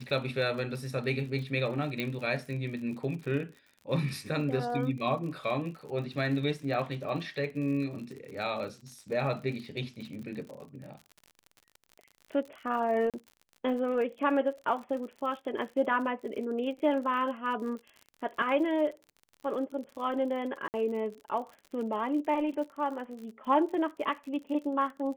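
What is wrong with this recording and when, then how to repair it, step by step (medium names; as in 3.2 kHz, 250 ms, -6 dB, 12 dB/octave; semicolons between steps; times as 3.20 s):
crackle 56 per s -40 dBFS
2.00 s: pop -19 dBFS
13.10–13.14 s: dropout 37 ms
20.68–20.74 s: dropout 59 ms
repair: de-click; interpolate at 13.10 s, 37 ms; interpolate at 20.68 s, 59 ms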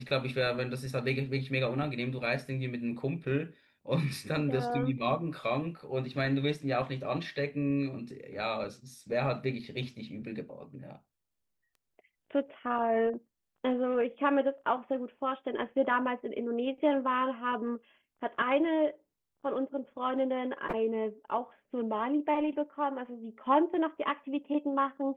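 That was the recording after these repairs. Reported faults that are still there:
nothing left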